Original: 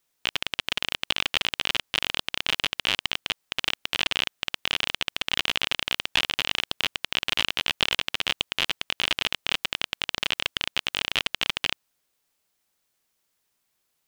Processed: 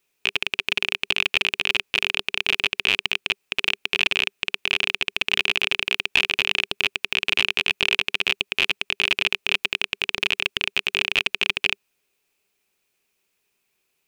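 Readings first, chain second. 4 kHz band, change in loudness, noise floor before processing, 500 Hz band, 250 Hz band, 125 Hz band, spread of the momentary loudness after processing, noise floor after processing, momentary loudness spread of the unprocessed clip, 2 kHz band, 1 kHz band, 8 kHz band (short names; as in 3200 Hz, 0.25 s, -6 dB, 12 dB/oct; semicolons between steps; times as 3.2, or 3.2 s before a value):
+2.0 dB, +4.5 dB, -76 dBFS, +4.0 dB, +2.0 dB, -0.5 dB, 4 LU, -74 dBFS, 4 LU, +7.0 dB, -0.5 dB, -1.0 dB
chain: thirty-one-band EQ 200 Hz +4 dB, 400 Hz +11 dB, 2500 Hz +12 dB; in parallel at -3 dB: limiter -7 dBFS, peak gain reduction 8 dB; on the sum: gain -4.5 dB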